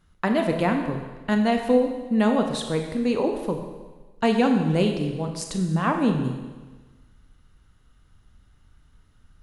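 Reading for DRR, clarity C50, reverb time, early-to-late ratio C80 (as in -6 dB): 4.0 dB, 6.0 dB, 1.3 s, 7.5 dB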